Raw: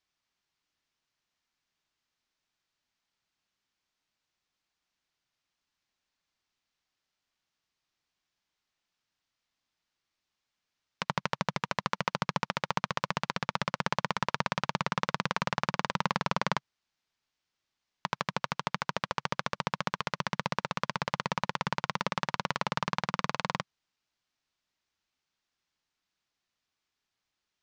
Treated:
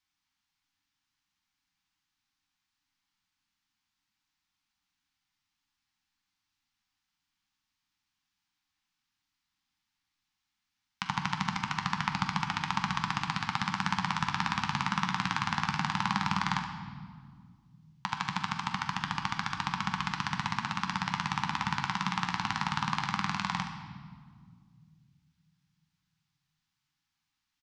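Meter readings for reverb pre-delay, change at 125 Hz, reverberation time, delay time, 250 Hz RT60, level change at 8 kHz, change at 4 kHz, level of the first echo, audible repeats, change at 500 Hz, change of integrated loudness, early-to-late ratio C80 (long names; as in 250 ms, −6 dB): 10 ms, +2.0 dB, 1.9 s, 72 ms, 3.0 s, +1.0 dB, +1.5 dB, −11.0 dB, 1, −19.5 dB, +1.0 dB, 8.0 dB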